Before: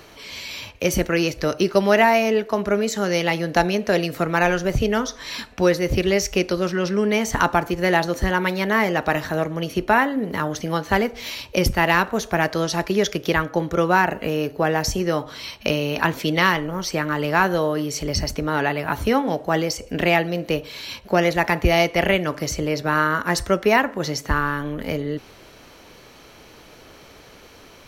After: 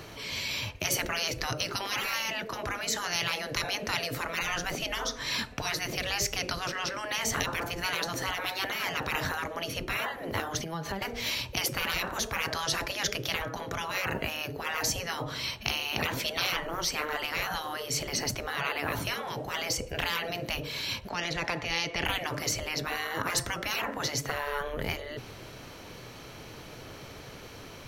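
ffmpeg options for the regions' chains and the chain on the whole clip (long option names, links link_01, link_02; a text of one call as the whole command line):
ffmpeg -i in.wav -filter_complex "[0:a]asettb=1/sr,asplit=3[link_01][link_02][link_03];[link_01]atrim=end=10.584[link_04];[link_02]atrim=start=10.58:end=11.02,asetpts=PTS-STARTPTS,afade=type=in:duration=0.004:curve=qsin,afade=type=out:start_time=0.436:duration=0.004:curve=qsin,acompressor=threshold=-30dB:ratio=20:attack=3.2:release=140:knee=1:detection=peak,aecho=1:1:4.9:0.49,atrim=end_sample=19404[link_05];[link_03]atrim=start=11.016[link_06];[link_04][link_05]acrossfade=duration=0.004:curve1=hsin:curve2=qsin[link_07];[link_07][link_06]acrossfade=duration=0.004:curve1=qsin:curve2=hsin,asettb=1/sr,asplit=3[link_08][link_09][link_10];[link_08]atrim=end=21.094[link_11];[link_09]atrim=start=21.09:end=22.05,asetpts=PTS-STARTPTS,afade=type=in:duration=0.004:curve=qsin,afade=type=out:start_time=0.956:duration=0.004:curve=qsin,lowpass=5900,acrossover=split=420|3000[link_12][link_13][link_14];[link_13]acompressor=threshold=-30dB:ratio=2.5:attack=3.2:release=140:knee=2.83:detection=peak[link_15];[link_12][link_15][link_14]amix=inputs=3:normalize=0,equalizer=frequency=120:width=0.35:gain=-9[link_16];[link_10]atrim=start=22.046[link_17];[link_11][link_16]acrossfade=duration=0.004:curve1=hsin:curve2=qsin[link_18];[link_18][link_17]acrossfade=duration=0.004:curve1=qsin:curve2=hsin,afftfilt=real='re*lt(hypot(re,im),0.178)':imag='im*lt(hypot(re,im),0.178)':win_size=1024:overlap=0.75,equalizer=frequency=120:width=1.7:gain=8.5" out.wav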